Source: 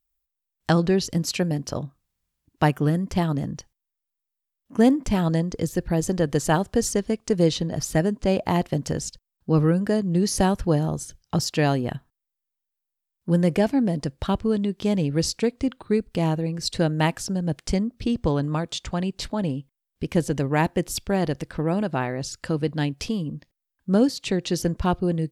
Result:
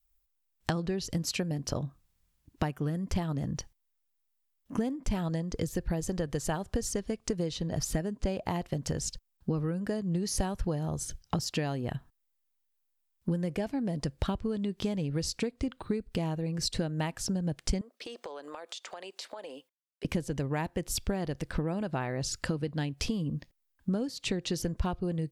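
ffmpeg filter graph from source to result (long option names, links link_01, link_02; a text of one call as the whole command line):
ffmpeg -i in.wav -filter_complex "[0:a]asettb=1/sr,asplit=3[link_01][link_02][link_03];[link_01]atrim=end=17.814[link_04];[link_02]atrim=start=17.81:end=20.05,asetpts=PTS-STARTPTS,afade=type=in:duration=0.004:curve=qsin,afade=type=out:start_time=2.236:duration=0.004:curve=qsin,agate=range=-33dB:threshold=-51dB:ratio=3:release=100:detection=peak,highpass=frequency=460:width=0.5412,highpass=frequency=460:width=1.3066,acompressor=threshold=-41dB:ratio=8:attack=3.2:release=140:knee=1:detection=peak[link_05];[link_03]atrim=start=20.046[link_06];[link_04][link_05]acrossfade=duration=0.004:curve1=hsin:curve2=qsin[link_07];[link_07][link_06]acrossfade=duration=0.004:curve1=qsin:curve2=hsin,adynamicequalizer=threshold=0.0224:dfrequency=260:dqfactor=1.1:tfrequency=260:tqfactor=1.1:attack=5:release=100:ratio=0.375:range=2:mode=cutabove:tftype=bell,acompressor=threshold=-31dB:ratio=12,lowshelf=frequency=79:gain=7,volume=2.5dB" out.wav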